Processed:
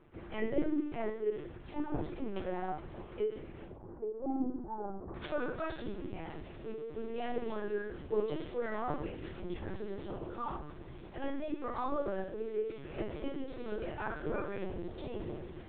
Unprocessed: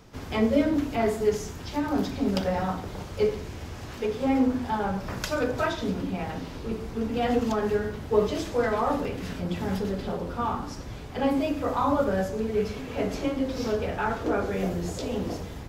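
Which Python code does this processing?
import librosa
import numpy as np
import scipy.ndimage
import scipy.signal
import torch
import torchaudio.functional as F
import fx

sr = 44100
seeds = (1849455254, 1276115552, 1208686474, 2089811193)

y = fx.lowpass(x, sr, hz=fx.steps((0.0, 3100.0), (3.67, 1000.0), (5.15, 4000.0)), slope=24)
y = fx.comb_fb(y, sr, f0_hz=150.0, decay_s=0.49, harmonics='all', damping=0.0, mix_pct=80)
y = fx.lpc_vocoder(y, sr, seeds[0], excitation='pitch_kept', order=10)
y = fx.peak_eq(y, sr, hz=350.0, db=11.0, octaves=0.23)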